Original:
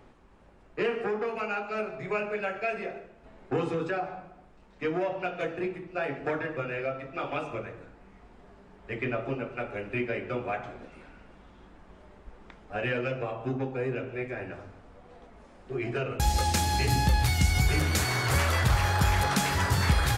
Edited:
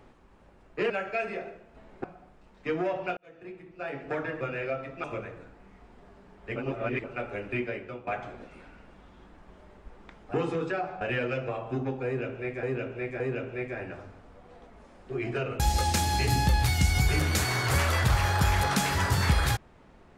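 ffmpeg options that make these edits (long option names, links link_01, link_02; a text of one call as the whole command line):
ffmpeg -i in.wav -filter_complex "[0:a]asplit=12[link_01][link_02][link_03][link_04][link_05][link_06][link_07][link_08][link_09][link_10][link_11][link_12];[link_01]atrim=end=0.902[link_13];[link_02]atrim=start=2.388:end=3.532[link_14];[link_03]atrim=start=4.198:end=5.33,asetpts=PTS-STARTPTS,afade=type=out:start_time=1.128:duration=0.004:curve=hsin[link_15];[link_04]atrim=start=5.33:end=7.202,asetpts=PTS-STARTPTS,afade=type=in:duration=1.21[link_16];[link_05]atrim=start=7.448:end=8.972[link_17];[link_06]atrim=start=8.968:end=9.452,asetpts=PTS-STARTPTS,areverse[link_18];[link_07]atrim=start=9.448:end=10.48,asetpts=PTS-STARTPTS,afade=type=out:start_time=0.512:duration=0.52:silence=0.199526[link_19];[link_08]atrim=start=10.48:end=12.752,asetpts=PTS-STARTPTS,afade=type=in:duration=0.004:curve=hsin:silence=0.199526[link_20];[link_09]atrim=start=3.528:end=4.202[link_21];[link_10]atrim=start=12.748:end=14.372[link_22];[link_11]atrim=start=13.798:end=14.372[link_23];[link_12]atrim=start=13.798[link_24];[link_13][link_14]acrossfade=duration=0.004:curve1=hsin:curve2=hsin[link_25];[link_15][link_16]concat=n=2:v=0:a=1[link_26];[link_25][link_26]acrossfade=duration=0.004:curve1=hsin:curve2=hsin[link_27];[link_27][link_17]acrossfade=duration=0.004:curve1=hsin:curve2=hsin[link_28];[link_28][link_18]acrossfade=duration=0.004:curve1=hsin:curve2=hsin[link_29];[link_19][link_20]concat=n=2:v=0:a=1[link_30];[link_29][link_30]acrossfade=duration=0.004:curve1=hsin:curve2=hsin[link_31];[link_31][link_21]acrossfade=duration=0.004:curve1=hsin:curve2=hsin[link_32];[link_32][link_22]acrossfade=duration=0.004:curve1=hsin:curve2=hsin[link_33];[link_33][link_23]acrossfade=duration=0.004:curve1=hsin:curve2=hsin[link_34];[link_34][link_24]acrossfade=duration=0.004:curve1=hsin:curve2=hsin" out.wav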